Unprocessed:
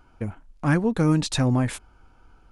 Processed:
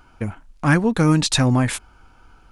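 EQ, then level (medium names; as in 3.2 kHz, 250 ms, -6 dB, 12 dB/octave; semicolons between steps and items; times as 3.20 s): bass shelf 200 Hz -5.5 dB; peaking EQ 470 Hz -4.5 dB 2 oct; +8.5 dB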